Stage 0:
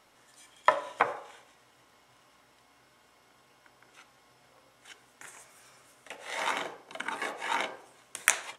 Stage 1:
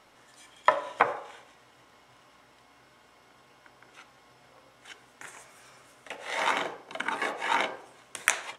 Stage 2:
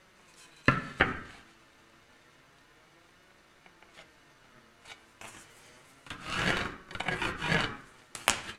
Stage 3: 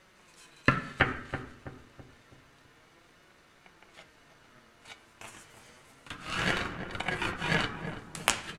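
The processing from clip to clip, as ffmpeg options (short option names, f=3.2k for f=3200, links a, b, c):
-filter_complex "[0:a]highshelf=f=6.6k:g=-7.5,asplit=2[a][b];[b]alimiter=limit=-11.5dB:level=0:latency=1:release=341,volume=0dB[c];[a][c]amix=inputs=2:normalize=0,volume=-1.5dB"
-af "aeval=exprs='val(0)*sin(2*PI*750*n/s)':c=same,flanger=delay=5.3:depth=3.7:regen=59:speed=0.29:shape=sinusoidal,volume=5.5dB"
-filter_complex "[0:a]asplit=2[a][b];[b]adelay=328,lowpass=f=840:p=1,volume=-7dB,asplit=2[c][d];[d]adelay=328,lowpass=f=840:p=1,volume=0.5,asplit=2[e][f];[f]adelay=328,lowpass=f=840:p=1,volume=0.5,asplit=2[g][h];[h]adelay=328,lowpass=f=840:p=1,volume=0.5,asplit=2[i][j];[j]adelay=328,lowpass=f=840:p=1,volume=0.5,asplit=2[k][l];[l]adelay=328,lowpass=f=840:p=1,volume=0.5[m];[a][c][e][g][i][k][m]amix=inputs=7:normalize=0"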